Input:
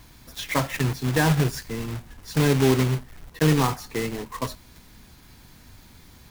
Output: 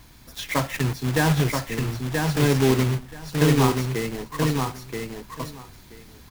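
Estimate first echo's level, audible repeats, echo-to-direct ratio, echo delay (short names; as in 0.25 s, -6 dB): -4.0 dB, 2, -4.0 dB, 0.979 s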